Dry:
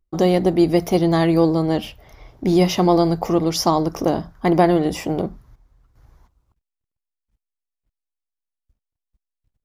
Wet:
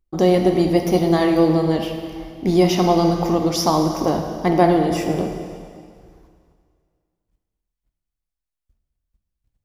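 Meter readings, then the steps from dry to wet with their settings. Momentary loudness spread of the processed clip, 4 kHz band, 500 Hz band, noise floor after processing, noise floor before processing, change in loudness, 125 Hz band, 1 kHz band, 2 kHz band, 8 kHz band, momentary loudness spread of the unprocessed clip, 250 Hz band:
11 LU, +0.5 dB, +1.0 dB, -84 dBFS, -85 dBFS, +0.5 dB, 0.0 dB, +1.0 dB, +0.5 dB, +0.5 dB, 9 LU, +0.5 dB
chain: plate-style reverb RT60 2.1 s, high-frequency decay 0.95×, DRR 3.5 dB; gain -1 dB

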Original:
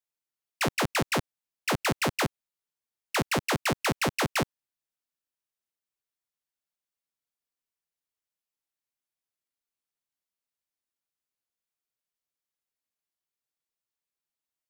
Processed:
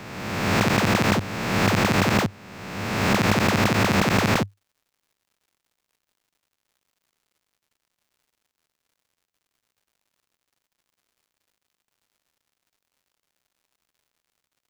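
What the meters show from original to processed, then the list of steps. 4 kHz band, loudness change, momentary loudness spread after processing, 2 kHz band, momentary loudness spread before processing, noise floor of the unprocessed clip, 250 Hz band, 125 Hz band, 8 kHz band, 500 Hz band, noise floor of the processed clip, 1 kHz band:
+5.5 dB, +7.0 dB, 11 LU, +7.0 dB, 5 LU, under -85 dBFS, +11.0 dB, +11.5 dB, +3.5 dB, +7.0 dB, -84 dBFS, +7.0 dB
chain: spectral swells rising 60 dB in 1.63 s; thirty-one-band EQ 100 Hz +11 dB, 200 Hz +9 dB, 10000 Hz -10 dB, 16000 Hz -4 dB; crackle 180/s -56 dBFS

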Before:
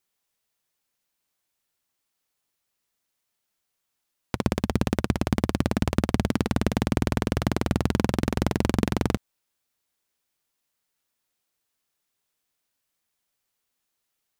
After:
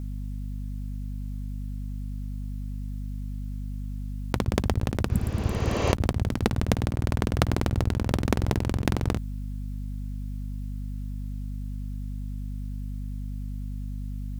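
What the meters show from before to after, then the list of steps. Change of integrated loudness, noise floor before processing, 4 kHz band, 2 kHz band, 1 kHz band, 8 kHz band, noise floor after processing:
-4.5 dB, -80 dBFS, -1.5 dB, -2.0 dB, -1.5 dB, -1.0 dB, -33 dBFS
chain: hum 50 Hz, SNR 19 dB; negative-ratio compressor -30 dBFS, ratio -0.5; spectral repair 5.13–5.89, 240–7300 Hz both; gain +8.5 dB

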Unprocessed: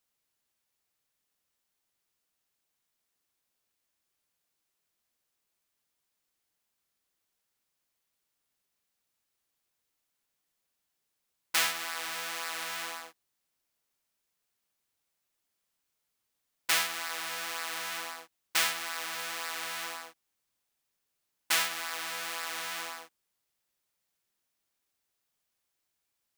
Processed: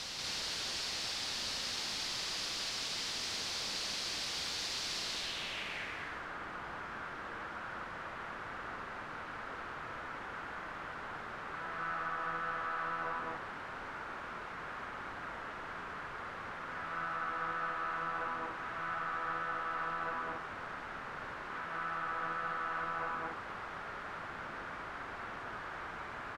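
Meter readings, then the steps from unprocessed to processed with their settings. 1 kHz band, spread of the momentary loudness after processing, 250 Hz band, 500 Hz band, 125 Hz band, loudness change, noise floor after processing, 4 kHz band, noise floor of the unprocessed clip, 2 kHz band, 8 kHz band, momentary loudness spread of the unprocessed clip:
+5.0 dB, 7 LU, +8.0 dB, +4.0 dB, +12.5 dB, -6.5 dB, -45 dBFS, -1.0 dB, -82 dBFS, -0.5 dB, -6.0 dB, 13 LU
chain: infinite clipping; low-pass sweep 4700 Hz -> 1400 Hz, 4.95–6.12; loudspeakers at several distances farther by 64 m -1 dB, 83 m -2 dB

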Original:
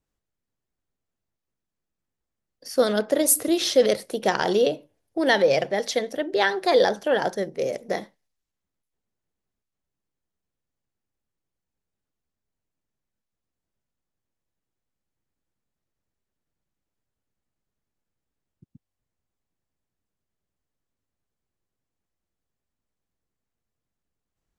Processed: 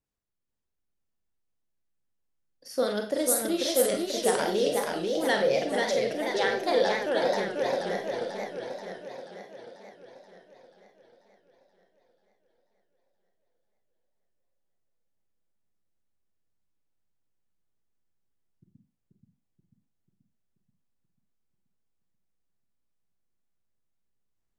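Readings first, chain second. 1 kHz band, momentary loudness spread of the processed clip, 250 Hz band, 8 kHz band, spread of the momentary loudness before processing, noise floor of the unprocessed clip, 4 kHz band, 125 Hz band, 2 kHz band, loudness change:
-3.5 dB, 15 LU, -4.5 dB, -4.0 dB, 9 LU, -85 dBFS, -4.0 dB, -4.0 dB, -4.0 dB, -4.5 dB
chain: Schroeder reverb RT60 0.34 s, combs from 32 ms, DRR 4.5 dB; warbling echo 0.485 s, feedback 59%, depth 182 cents, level -3.5 dB; gain -7.5 dB

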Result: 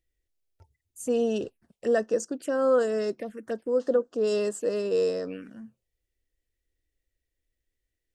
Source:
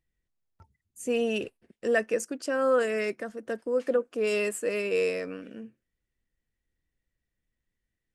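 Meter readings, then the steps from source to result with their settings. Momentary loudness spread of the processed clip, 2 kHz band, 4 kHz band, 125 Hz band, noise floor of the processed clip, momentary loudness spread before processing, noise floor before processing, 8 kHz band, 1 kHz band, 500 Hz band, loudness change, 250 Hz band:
13 LU, -7.5 dB, -2.5 dB, n/a, -85 dBFS, 13 LU, -85 dBFS, -1.0 dB, -0.5 dB, +2.0 dB, +1.0 dB, +2.0 dB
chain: envelope phaser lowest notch 180 Hz, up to 2300 Hz, full sweep at -28.5 dBFS; gain +2.5 dB

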